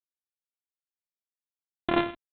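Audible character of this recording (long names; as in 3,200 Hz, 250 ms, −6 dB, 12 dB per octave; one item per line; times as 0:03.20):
a buzz of ramps at a fixed pitch in blocks of 128 samples
G.726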